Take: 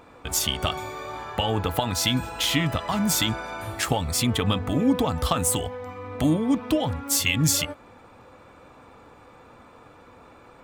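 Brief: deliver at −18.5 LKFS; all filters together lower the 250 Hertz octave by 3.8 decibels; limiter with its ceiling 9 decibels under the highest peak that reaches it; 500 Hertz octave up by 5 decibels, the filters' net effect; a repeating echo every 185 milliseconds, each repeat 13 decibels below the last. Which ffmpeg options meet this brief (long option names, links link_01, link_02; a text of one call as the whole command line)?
ffmpeg -i in.wav -af "equalizer=frequency=250:width_type=o:gain=-7,equalizer=frequency=500:width_type=o:gain=7.5,alimiter=limit=-15.5dB:level=0:latency=1,aecho=1:1:185|370|555:0.224|0.0493|0.0108,volume=8dB" out.wav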